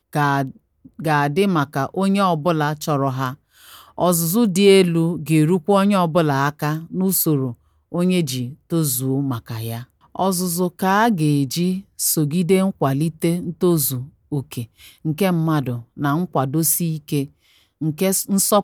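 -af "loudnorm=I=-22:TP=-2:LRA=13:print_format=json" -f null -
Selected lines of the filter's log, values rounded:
"input_i" : "-19.6",
"input_tp" : "-2.5",
"input_lra" : "4.0",
"input_thresh" : "-30.0",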